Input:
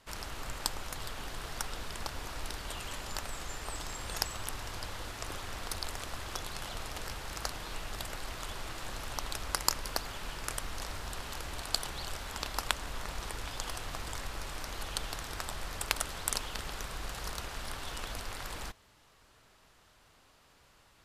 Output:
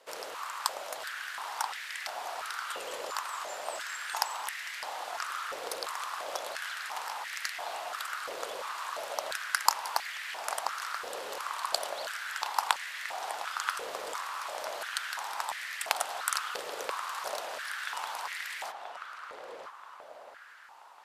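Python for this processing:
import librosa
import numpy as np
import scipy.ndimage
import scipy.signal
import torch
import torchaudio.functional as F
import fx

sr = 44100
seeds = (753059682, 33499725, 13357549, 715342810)

p1 = x + fx.echo_filtered(x, sr, ms=981, feedback_pct=57, hz=1800.0, wet_db=-4.5, dry=0)
y = fx.filter_held_highpass(p1, sr, hz=2.9, low_hz=500.0, high_hz=1900.0)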